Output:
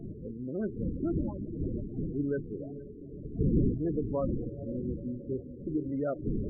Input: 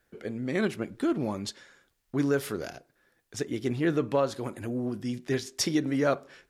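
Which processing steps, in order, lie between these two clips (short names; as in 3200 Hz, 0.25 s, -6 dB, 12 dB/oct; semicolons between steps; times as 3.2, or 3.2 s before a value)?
median filter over 25 samples; wind noise 280 Hz -29 dBFS; sample leveller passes 1; diffused feedback echo 0.481 s, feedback 54%, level -11 dB; loudest bins only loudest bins 16; gain -9 dB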